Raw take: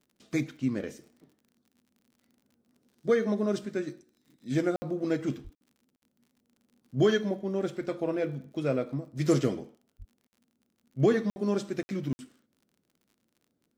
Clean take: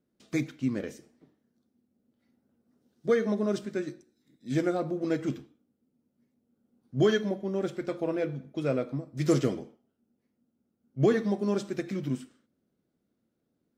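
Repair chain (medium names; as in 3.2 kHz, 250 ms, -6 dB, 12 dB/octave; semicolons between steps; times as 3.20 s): de-click; de-plosive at 5.43/9.98 s; interpolate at 4.76/5.55/5.96/10.27/11.30/11.83/12.13 s, 60 ms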